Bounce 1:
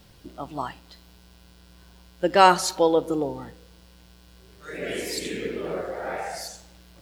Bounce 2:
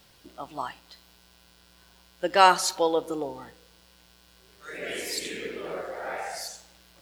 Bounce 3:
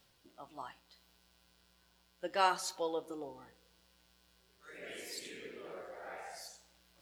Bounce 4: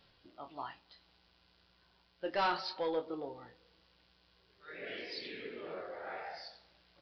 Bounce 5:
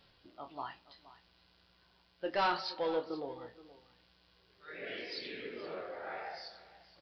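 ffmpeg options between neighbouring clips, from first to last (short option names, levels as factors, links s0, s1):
-af "lowshelf=f=390:g=-11.5"
-af "areverse,acompressor=mode=upward:threshold=0.00355:ratio=2.5,areverse,flanger=delay=7.2:depth=6.2:regen=-69:speed=0.37:shape=triangular,volume=0.376"
-filter_complex "[0:a]aresample=11025,asoftclip=type=tanh:threshold=0.0335,aresample=44100,asplit=2[s0][s1];[s1]adelay=25,volume=0.398[s2];[s0][s2]amix=inputs=2:normalize=0,volume=1.41"
-af "aecho=1:1:473:0.141,volume=1.12"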